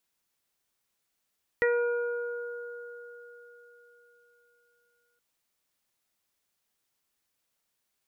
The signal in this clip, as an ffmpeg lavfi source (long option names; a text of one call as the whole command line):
ffmpeg -f lavfi -i "aevalsrc='0.0794*pow(10,-3*t/3.83)*sin(2*PI*478*t)+0.0126*pow(10,-3*t/2.14)*sin(2*PI*956*t)+0.0282*pow(10,-3*t/4.89)*sin(2*PI*1434*t)+0.0794*pow(10,-3*t/0.26)*sin(2*PI*1912*t)+0.00891*pow(10,-3*t/1.15)*sin(2*PI*2390*t)':duration=3.57:sample_rate=44100" out.wav